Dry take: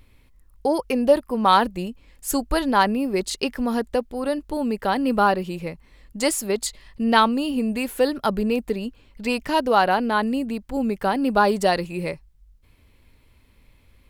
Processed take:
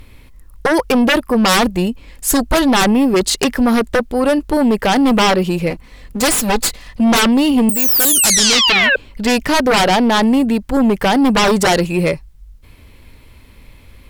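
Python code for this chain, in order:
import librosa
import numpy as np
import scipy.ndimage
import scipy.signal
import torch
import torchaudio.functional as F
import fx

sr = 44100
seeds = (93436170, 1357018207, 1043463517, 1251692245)

y = fx.lower_of_two(x, sr, delay_ms=4.0, at=(5.7, 7.12))
y = fx.spec_paint(y, sr, seeds[0], shape='fall', start_s=7.69, length_s=1.27, low_hz=500.0, high_hz=9100.0, level_db=-13.0)
y = fx.fold_sine(y, sr, drive_db=16, ceiling_db=-2.5)
y = F.gain(torch.from_numpy(y), -6.5).numpy()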